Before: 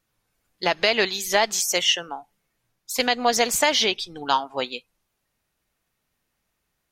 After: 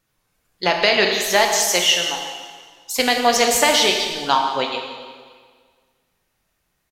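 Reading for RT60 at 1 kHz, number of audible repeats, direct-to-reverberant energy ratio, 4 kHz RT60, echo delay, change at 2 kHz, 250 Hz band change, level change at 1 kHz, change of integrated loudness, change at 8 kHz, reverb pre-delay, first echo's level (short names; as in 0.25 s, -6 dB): 1.7 s, 1, 2.0 dB, 1.6 s, 0.175 s, +5.0 dB, +4.5 dB, +5.0 dB, +4.5 dB, +5.0 dB, 7 ms, -14.0 dB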